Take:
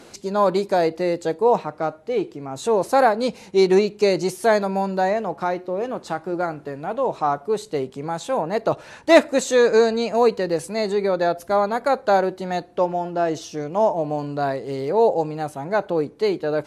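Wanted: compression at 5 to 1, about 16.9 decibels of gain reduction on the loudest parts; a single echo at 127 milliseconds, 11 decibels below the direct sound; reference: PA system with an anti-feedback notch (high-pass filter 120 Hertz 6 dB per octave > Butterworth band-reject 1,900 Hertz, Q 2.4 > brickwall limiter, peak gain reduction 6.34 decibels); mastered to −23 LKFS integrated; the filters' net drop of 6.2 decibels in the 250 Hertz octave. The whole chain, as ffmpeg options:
ffmpeg -i in.wav -af "equalizer=frequency=250:width_type=o:gain=-8.5,acompressor=threshold=-28dB:ratio=5,highpass=frequency=120:poles=1,asuperstop=centerf=1900:order=8:qfactor=2.4,aecho=1:1:127:0.282,volume=10.5dB,alimiter=limit=-13dB:level=0:latency=1" out.wav

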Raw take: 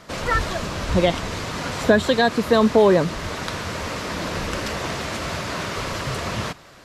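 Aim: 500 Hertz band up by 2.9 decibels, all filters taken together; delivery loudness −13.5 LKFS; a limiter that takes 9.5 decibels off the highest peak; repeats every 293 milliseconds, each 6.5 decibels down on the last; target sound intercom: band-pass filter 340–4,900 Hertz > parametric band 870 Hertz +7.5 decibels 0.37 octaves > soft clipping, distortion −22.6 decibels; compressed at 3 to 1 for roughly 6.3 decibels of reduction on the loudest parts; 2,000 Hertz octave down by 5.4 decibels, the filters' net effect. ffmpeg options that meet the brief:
ffmpeg -i in.wav -af "equalizer=frequency=500:width_type=o:gain=4.5,equalizer=frequency=2000:width_type=o:gain=-7.5,acompressor=threshold=-16dB:ratio=3,alimiter=limit=-15dB:level=0:latency=1,highpass=340,lowpass=4900,equalizer=frequency=870:width_type=o:width=0.37:gain=7.5,aecho=1:1:293|586|879|1172|1465|1758:0.473|0.222|0.105|0.0491|0.0231|0.0109,asoftclip=threshold=-15dB,volume=13.5dB" out.wav

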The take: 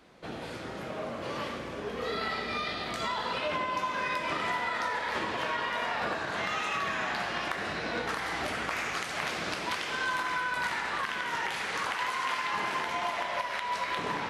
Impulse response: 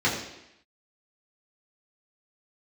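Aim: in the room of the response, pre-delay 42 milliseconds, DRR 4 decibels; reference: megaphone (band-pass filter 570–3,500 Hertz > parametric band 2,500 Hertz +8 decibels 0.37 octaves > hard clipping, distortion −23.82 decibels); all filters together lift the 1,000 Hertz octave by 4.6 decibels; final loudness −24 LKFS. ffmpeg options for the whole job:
-filter_complex "[0:a]equalizer=frequency=1000:width_type=o:gain=5.5,asplit=2[link_01][link_02];[1:a]atrim=start_sample=2205,adelay=42[link_03];[link_02][link_03]afir=irnorm=-1:irlink=0,volume=-18.5dB[link_04];[link_01][link_04]amix=inputs=2:normalize=0,highpass=570,lowpass=3500,equalizer=frequency=2500:width_type=o:width=0.37:gain=8,asoftclip=type=hard:threshold=-19.5dB,volume=3dB"

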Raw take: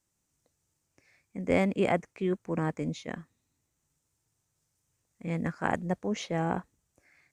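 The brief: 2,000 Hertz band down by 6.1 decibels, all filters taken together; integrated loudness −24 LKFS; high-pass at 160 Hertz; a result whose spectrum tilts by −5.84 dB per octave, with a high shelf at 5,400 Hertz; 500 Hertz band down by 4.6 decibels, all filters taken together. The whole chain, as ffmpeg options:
ffmpeg -i in.wav -af "highpass=160,equalizer=frequency=500:width_type=o:gain=-5.5,equalizer=frequency=2000:width_type=o:gain=-8,highshelf=frequency=5400:gain=6.5,volume=10.5dB" out.wav

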